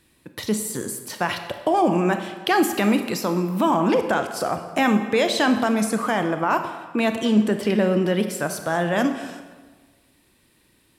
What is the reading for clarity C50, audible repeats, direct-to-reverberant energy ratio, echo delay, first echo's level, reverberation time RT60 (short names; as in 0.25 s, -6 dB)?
8.0 dB, none, 7.0 dB, none, none, 1.4 s